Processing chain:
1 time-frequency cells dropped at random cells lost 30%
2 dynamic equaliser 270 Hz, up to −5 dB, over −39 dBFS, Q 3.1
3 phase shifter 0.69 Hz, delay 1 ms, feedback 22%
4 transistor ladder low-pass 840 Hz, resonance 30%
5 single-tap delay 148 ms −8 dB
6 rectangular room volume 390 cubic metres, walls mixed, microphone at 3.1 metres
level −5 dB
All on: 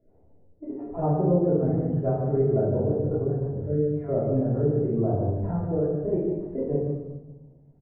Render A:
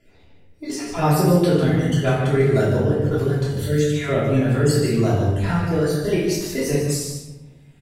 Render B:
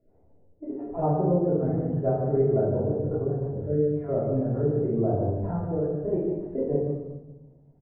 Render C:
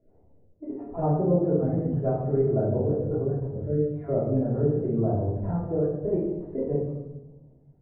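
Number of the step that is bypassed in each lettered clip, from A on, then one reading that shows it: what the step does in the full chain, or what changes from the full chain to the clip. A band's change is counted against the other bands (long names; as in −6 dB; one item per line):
4, 1 kHz band +2.5 dB
3, 1 kHz band +2.5 dB
5, change in momentary loudness spread +2 LU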